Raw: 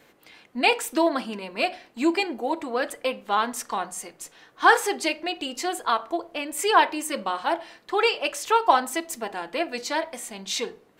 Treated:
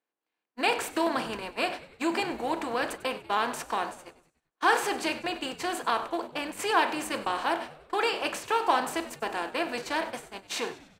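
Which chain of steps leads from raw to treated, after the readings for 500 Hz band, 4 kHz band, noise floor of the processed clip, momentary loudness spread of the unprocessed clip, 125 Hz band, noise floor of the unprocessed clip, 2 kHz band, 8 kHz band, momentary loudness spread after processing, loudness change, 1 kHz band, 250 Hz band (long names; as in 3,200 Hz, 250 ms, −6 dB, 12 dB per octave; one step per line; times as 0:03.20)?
−5.0 dB, −4.5 dB, below −85 dBFS, 12 LU, can't be measured, −58 dBFS, −4.0 dB, −6.5 dB, 8 LU, −4.5 dB, −4.5 dB, −4.5 dB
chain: compressor on every frequency bin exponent 0.6
noise gate −26 dBFS, range −44 dB
echo with shifted repeats 97 ms, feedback 50%, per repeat −92 Hz, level −16.5 dB
level −8.5 dB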